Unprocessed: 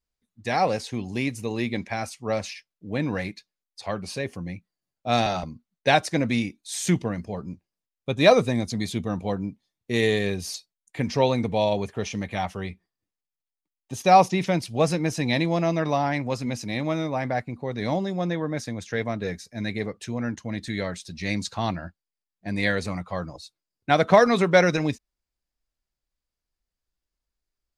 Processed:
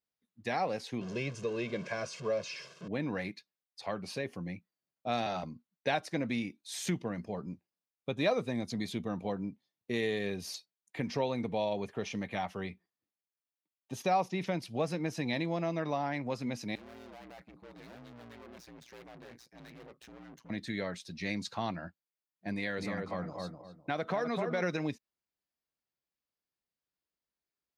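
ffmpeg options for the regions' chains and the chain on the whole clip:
-filter_complex "[0:a]asettb=1/sr,asplit=3[a][b][c];[a]atrim=end=1.014[d];[b]atrim=start=1.01:end=2.88,asetpts=PTS-STARTPTS,afade=t=in:d=0.004:c=qsin,afade=t=out:st=1.866:d=0.004:c=qsin,aeval=exprs='val(0)+0.5*0.0188*sgn(val(0))':c=same,highpass=150,equalizer=f=150:t=q:w=4:g=9,equalizer=f=850:t=q:w=4:g=-8,equalizer=f=2k:t=q:w=4:g=-8,equalizer=f=3.9k:t=q:w=4:g=-6,lowpass=f=7k:w=0.5412,lowpass=f=7k:w=1.3066,aecho=1:1:1.9:0.72,atrim=end_sample=82467[e];[c]atrim=start=2.876[f];[d][e]acrossfade=d=0.004:c1=hsin:c2=qsin[g];[g][f]acrossfade=d=0.004:c1=qsin:c2=hsin,asettb=1/sr,asplit=3[h][i][j];[h]atrim=end=16.754[k];[i]atrim=start=16.75:end=20.5,asetpts=PTS-STARTPTS,afade=t=in:d=0.004:c=qsin,afade=t=out:st=3.746:d=0.004:c=qsin,aeval=exprs='(tanh(126*val(0)+0.55)-tanh(0.55))/126':c=same,aeval=exprs='val(0)*sin(2*PI*59*n/s)':c=same[l];[j]atrim=start=20.496[m];[k][l]acrossfade=d=0.004:c1=hsin:c2=qsin[n];[n][m]acrossfade=d=0.004:c1=qsin:c2=hsin,asettb=1/sr,asplit=3[o][p][q];[o]atrim=end=22.534[r];[p]atrim=start=22.53:end=24.62,asetpts=PTS-STARTPTS,afade=t=in:d=0.004:c=qsin,afade=t=out:st=2.086:d=0.004:c=qsin,asplit=2[s][t];[t]adelay=252,lowpass=f=1.2k:p=1,volume=-5dB,asplit=2[u][v];[v]adelay=252,lowpass=f=1.2k:p=1,volume=0.28,asplit=2[w][x];[x]adelay=252,lowpass=f=1.2k:p=1,volume=0.28,asplit=2[y][z];[z]adelay=252,lowpass=f=1.2k:p=1,volume=0.28[aa];[s][u][w][y][aa]amix=inputs=5:normalize=0,atrim=end_sample=92169,acompressor=threshold=-25dB:ratio=2:attack=3.2:release=140:knee=1:detection=peak[ab];[q]atrim=start=24.616[ac];[r][ab]acrossfade=d=0.004:c1=hsin:c2=qsin[ad];[ad][ac]acrossfade=d=0.004:c1=qsin:c2=hsin,highpass=140,equalizer=f=8.1k:t=o:w=1.1:g=-7.5,acompressor=threshold=-29dB:ratio=2,volume=-4dB"

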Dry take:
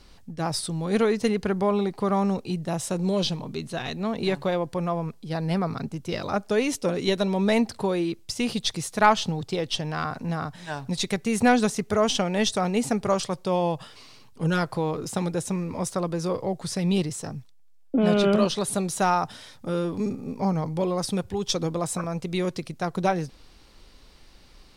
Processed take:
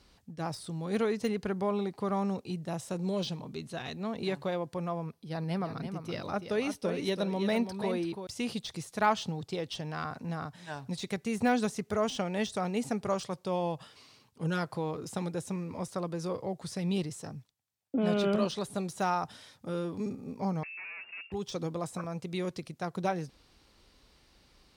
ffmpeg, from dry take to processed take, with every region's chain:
-filter_complex "[0:a]asettb=1/sr,asplit=3[a][b][c];[a]atrim=end=5.044[d];[b]atrim=start=5.04:end=8.27,asetpts=PTS-STARTPTS,afade=t=in:d=0.004:c=qsin,afade=t=out:st=3.226:d=0.004:c=qsin,equalizer=f=7.2k:t=o:w=0.22:g=-10,aecho=1:1:335:0.376,atrim=end_sample=142443[e];[c]atrim=start=8.266[f];[d][e]acrossfade=d=0.004:c1=hsin:c2=qsin[g];[g][f]acrossfade=d=0.004:c1=qsin:c2=hsin,asettb=1/sr,asplit=3[h][i][j];[h]atrim=end=20.634[k];[i]atrim=start=20.63:end=21.32,asetpts=PTS-STARTPTS,afade=t=in:d=0.004:c=qsin,afade=t=out:st=0.686:d=0.004:c=qsin,aeval=exprs='(tanh(50.1*val(0)+0.25)-tanh(0.25))/50.1':c=same,lowpass=f=2.4k:t=q:w=0.5098,lowpass=f=2.4k:t=q:w=0.6013,lowpass=f=2.4k:t=q:w=0.9,lowpass=f=2.4k:t=q:w=2.563,afreqshift=-2800[l];[j]atrim=start=21.316[m];[k][l]acrossfade=d=0.004:c1=hsin:c2=qsin[n];[n][m]acrossfade=d=0.004:c1=qsin:c2=hsin,highpass=43,deesser=0.65,volume=-7.5dB"

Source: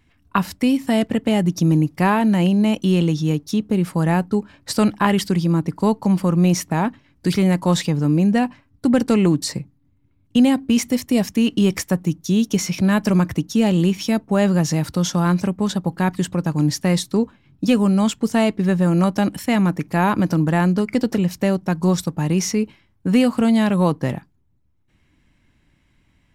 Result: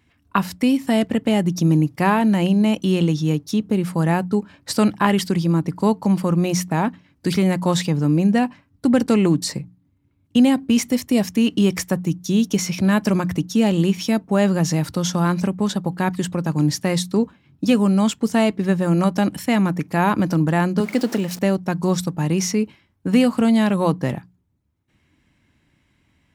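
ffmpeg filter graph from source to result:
-filter_complex "[0:a]asettb=1/sr,asplit=3[a][b][c];[a]atrim=end=20.804[d];[b]atrim=start=20.8:end=21.39,asetpts=PTS-STARTPTS,afade=t=in:d=0.004:c=qsin,afade=t=out:st=0.586:d=0.004:c=qsin,aeval=exprs='val(0)+0.5*0.0282*sgn(val(0))':c=same,highpass=200[e];[c]atrim=start=21.386[f];[d][e]acrossfade=d=0.004:c1=hsin:c2=qsin[g];[g][f]acrossfade=d=0.004:c1=qsin:c2=hsin,highpass=60,bandreject=f=60:t=h:w=6,bandreject=f=120:t=h:w=6,bandreject=f=180:t=h:w=6"

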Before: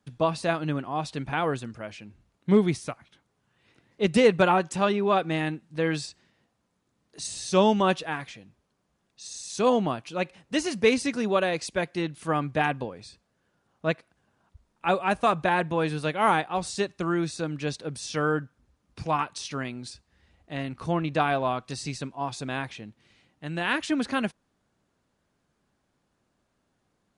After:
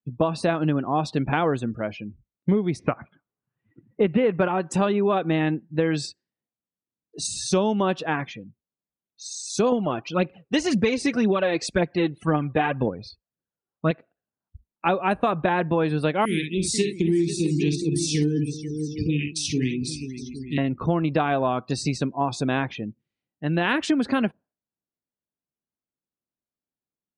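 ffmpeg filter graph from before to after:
-filter_complex "[0:a]asettb=1/sr,asplit=3[a][b][c];[a]atrim=end=2.794[d];[b]atrim=start=2.79:end=4.48,asetpts=PTS-STARTPTS,afade=t=in:d=0.004:c=qsin,afade=t=out:st=1.686:d=0.004:c=qsin,lowpass=f=2.9k:w=0.5412,lowpass=f=2.9k:w=1.3066,equalizer=f=1.2k:t=o:w=0.98:g=2.5,acontrast=56[e];[c]atrim=start=4.476[f];[d][e]acrossfade=d=0.004:c1=hsin:c2=qsin[g];[g][f]acrossfade=d=0.004:c1=qsin:c2=hsin,asettb=1/sr,asplit=3[h][i][j];[h]atrim=end=9.724[k];[i]atrim=start=9.72:end=13.91,asetpts=PTS-STARTPTS,afade=t=in:d=0.004:c=qsin,afade=t=out:st=4.186:d=0.004:c=qsin,lowpass=8.6k,aphaser=in_gain=1:out_gain=1:delay=2.9:decay=0.53:speed=1.9:type=triangular[l];[j]atrim=start=13.906[m];[k][l]acrossfade=d=0.004:c1=hsin:c2=qsin[n];[n][m]acrossfade=d=0.004:c1=qsin:c2=hsin,asettb=1/sr,asplit=3[o][p][q];[o]atrim=end=16.254[r];[p]atrim=start=16.25:end=20.58,asetpts=PTS-STARTPTS,afade=t=in:d=0.004:c=qsin,afade=t=out:st=4.326:d=0.004:c=qsin,asuperstop=centerf=900:order=12:qfactor=0.57,highshelf=f=8.8k:g=8.5,aecho=1:1:47|61|261|486|645|813:0.398|0.335|0.112|0.266|0.141|0.237,atrim=end_sample=190953[s];[q]atrim=start=20.576[t];[r][s]acrossfade=d=0.004:c1=hsin:c2=qsin[u];[u][t]acrossfade=d=0.004:c1=qsin:c2=hsin,afftdn=nr=34:nf=-45,equalizer=f=290:t=o:w=2.5:g=5.5,acompressor=threshold=-24dB:ratio=10,volume=6dB"

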